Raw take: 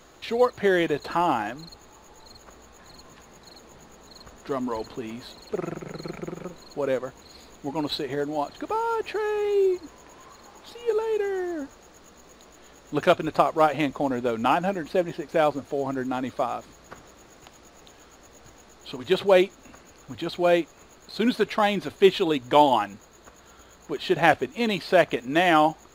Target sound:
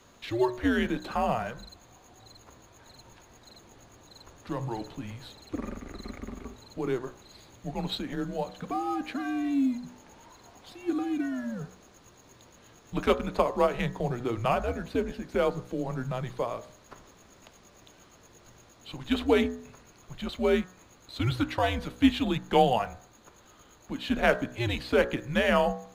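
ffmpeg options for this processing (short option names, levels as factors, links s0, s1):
-af "bandreject=f=61.05:t=h:w=4,bandreject=f=122.1:t=h:w=4,bandreject=f=183.15:t=h:w=4,bandreject=f=244.2:t=h:w=4,bandreject=f=305.25:t=h:w=4,bandreject=f=366.3:t=h:w=4,bandreject=f=427.35:t=h:w=4,bandreject=f=488.4:t=h:w=4,bandreject=f=549.45:t=h:w=4,bandreject=f=610.5:t=h:w=4,bandreject=f=671.55:t=h:w=4,bandreject=f=732.6:t=h:w=4,bandreject=f=793.65:t=h:w=4,bandreject=f=854.7:t=h:w=4,bandreject=f=915.75:t=h:w=4,bandreject=f=976.8:t=h:w=4,bandreject=f=1037.85:t=h:w=4,bandreject=f=1098.9:t=h:w=4,bandreject=f=1159.95:t=h:w=4,bandreject=f=1221:t=h:w=4,bandreject=f=1282.05:t=h:w=4,bandreject=f=1343.1:t=h:w=4,bandreject=f=1404.15:t=h:w=4,bandreject=f=1465.2:t=h:w=4,bandreject=f=1526.25:t=h:w=4,bandreject=f=1587.3:t=h:w=4,bandreject=f=1648.35:t=h:w=4,bandreject=f=1709.4:t=h:w=4,bandreject=f=1770.45:t=h:w=4,bandreject=f=1831.5:t=h:w=4,bandreject=f=1892.55:t=h:w=4,bandreject=f=1953.6:t=h:w=4,bandreject=f=2014.65:t=h:w=4,afreqshift=-120,volume=0.631"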